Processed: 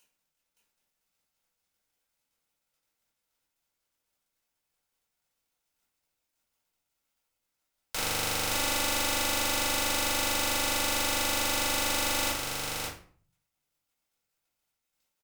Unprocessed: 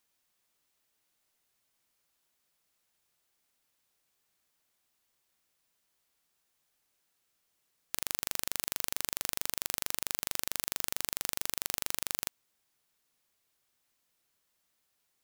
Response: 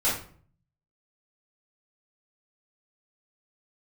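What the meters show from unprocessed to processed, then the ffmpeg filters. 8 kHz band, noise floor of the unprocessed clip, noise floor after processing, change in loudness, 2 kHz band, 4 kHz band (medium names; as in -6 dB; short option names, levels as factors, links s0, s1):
+6.5 dB, -78 dBFS, -84 dBFS, +6.5 dB, +11.5 dB, +10.5 dB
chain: -filter_complex "[0:a]highshelf=f=9100:g=-11.5,acrossover=split=420|1900[s0][s1][s2];[s2]acompressor=mode=upward:threshold=0.00316:ratio=2.5[s3];[s0][s1][s3]amix=inputs=3:normalize=0,aeval=exprs='sgn(val(0))*max(abs(val(0))-0.00126,0)':c=same,aecho=1:1:371|568:0.141|0.631[s4];[1:a]atrim=start_sample=2205[s5];[s4][s5]afir=irnorm=-1:irlink=0"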